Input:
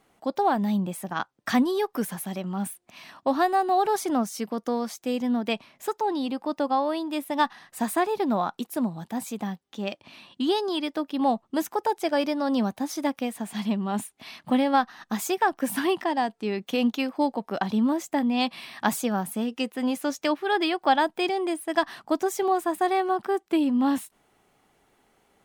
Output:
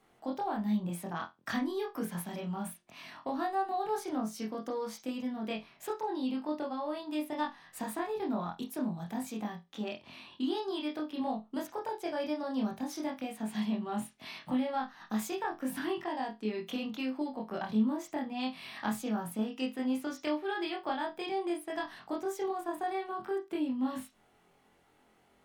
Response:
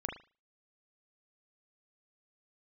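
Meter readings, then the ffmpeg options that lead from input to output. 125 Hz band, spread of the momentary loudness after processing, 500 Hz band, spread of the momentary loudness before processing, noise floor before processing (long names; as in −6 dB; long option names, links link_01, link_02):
−6.0 dB, 6 LU, −9.5 dB, 9 LU, −69 dBFS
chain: -filter_complex "[0:a]acrossover=split=170[link_01][link_02];[link_02]acompressor=threshold=-34dB:ratio=2.5[link_03];[link_01][link_03]amix=inputs=2:normalize=0[link_04];[1:a]atrim=start_sample=2205,asetrate=70560,aresample=44100[link_05];[link_04][link_05]afir=irnorm=-1:irlink=0"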